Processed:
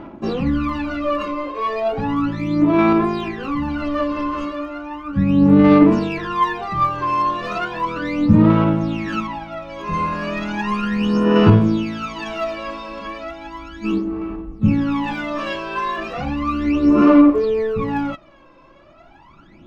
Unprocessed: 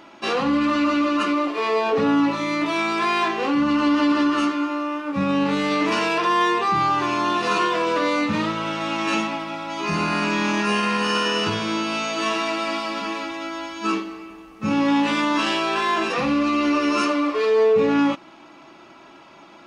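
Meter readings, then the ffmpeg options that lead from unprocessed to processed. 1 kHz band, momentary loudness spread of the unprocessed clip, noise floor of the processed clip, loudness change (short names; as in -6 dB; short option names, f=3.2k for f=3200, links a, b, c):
-0.5 dB, 7 LU, -48 dBFS, +3.0 dB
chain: -af "aemphasis=mode=reproduction:type=riaa,aphaser=in_gain=1:out_gain=1:delay=1.9:decay=0.8:speed=0.35:type=sinusoidal,volume=-6dB"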